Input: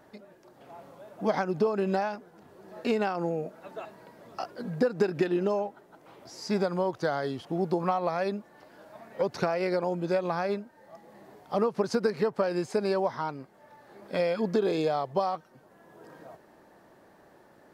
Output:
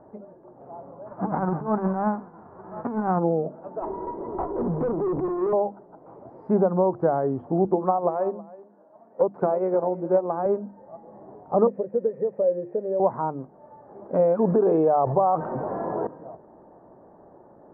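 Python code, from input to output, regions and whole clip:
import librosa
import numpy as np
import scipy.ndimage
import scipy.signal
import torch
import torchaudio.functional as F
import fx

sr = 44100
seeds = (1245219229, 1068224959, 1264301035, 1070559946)

y = fx.envelope_flatten(x, sr, power=0.3, at=(1.05, 3.18), fade=0.02)
y = fx.over_compress(y, sr, threshold_db=-30.0, ratio=-0.5, at=(1.05, 3.18), fade=0.02)
y = fx.lowpass_res(y, sr, hz=1400.0, q=1.7, at=(1.05, 3.18), fade=0.02)
y = fx.chain(y, sr, fx.small_body(hz=(370.0, 960.0, 2000.0), ring_ms=30, db=18),
    fx.over_compress(threshold_db=-14.0, ratio=-0.5),
    fx.tube_stage(drive_db=30.0, bias=0.55), at=(3.82, 5.53))
y = fx.chain(y, sr, fx.highpass(hz=200.0, slope=12),
    fx.echo_single(ms=320, db=-13.5),
    fx.upward_expand(threshold_db=-45.0, expansion=1.5), at=(7.65, 10.46))
y = fx.chain(y, sr, fx.crossing_spikes(level_db=-20.5),
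    fx.formant_cascade(vowel='e'),
    fx.low_shelf(hz=460.0, db=7.5), at=(11.67, 13.0))
y = fx.chain(y, sr, fx.low_shelf(hz=380.0, db=-7.0),
    fx.env_flatten(amount_pct=70), at=(14.39, 16.07))
y = scipy.signal.sosfilt(scipy.signal.butter(4, 1000.0, 'lowpass', fs=sr, output='sos'), y)
y = fx.hum_notches(y, sr, base_hz=50, count=7)
y = y * librosa.db_to_amplitude(7.5)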